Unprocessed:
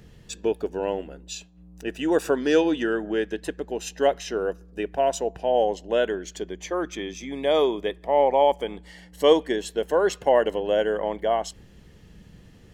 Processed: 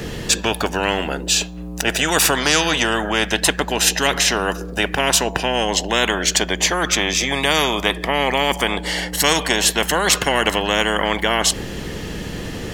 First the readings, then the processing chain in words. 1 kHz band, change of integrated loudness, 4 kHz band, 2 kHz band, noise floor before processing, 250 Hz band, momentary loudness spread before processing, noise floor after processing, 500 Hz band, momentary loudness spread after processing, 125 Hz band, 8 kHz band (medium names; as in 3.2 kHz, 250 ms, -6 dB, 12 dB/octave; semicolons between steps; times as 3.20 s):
+6.0 dB, +6.5 dB, +17.5 dB, +15.5 dB, -51 dBFS, +4.5 dB, 13 LU, -30 dBFS, -0.5 dB, 7 LU, no reading, +21.0 dB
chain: spectrum-flattening compressor 4:1; trim +4 dB